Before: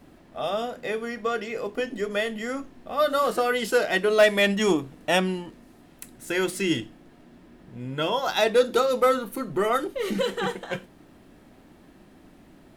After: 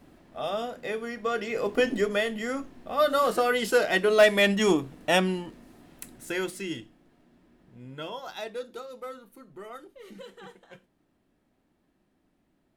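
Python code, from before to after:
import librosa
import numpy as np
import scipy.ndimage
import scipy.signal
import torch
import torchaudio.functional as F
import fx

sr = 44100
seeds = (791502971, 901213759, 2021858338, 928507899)

y = fx.gain(x, sr, db=fx.line((1.2, -3.0), (1.9, 6.0), (2.2, -0.5), (6.12, -0.5), (6.7, -10.0), (7.92, -10.0), (8.85, -19.0)))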